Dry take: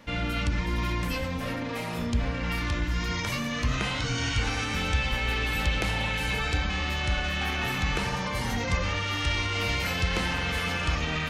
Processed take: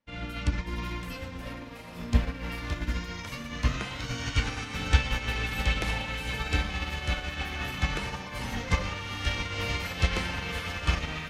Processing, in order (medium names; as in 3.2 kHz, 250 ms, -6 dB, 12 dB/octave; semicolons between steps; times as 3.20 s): on a send: echo that smears into a reverb 776 ms, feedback 48%, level -8 dB; on the sum: upward expansion 2.5:1, over -45 dBFS; trim +5.5 dB